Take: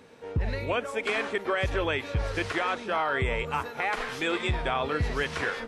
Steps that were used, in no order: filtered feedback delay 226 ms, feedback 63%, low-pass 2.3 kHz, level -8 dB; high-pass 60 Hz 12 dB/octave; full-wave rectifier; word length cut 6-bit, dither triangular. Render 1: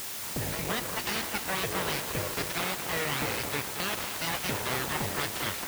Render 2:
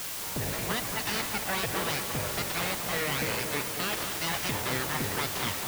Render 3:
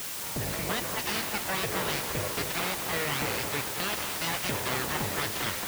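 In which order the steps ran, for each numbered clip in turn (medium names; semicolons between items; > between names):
word length cut > filtered feedback delay > full-wave rectifier > high-pass; full-wave rectifier > high-pass > word length cut > filtered feedback delay; filtered feedback delay > full-wave rectifier > word length cut > high-pass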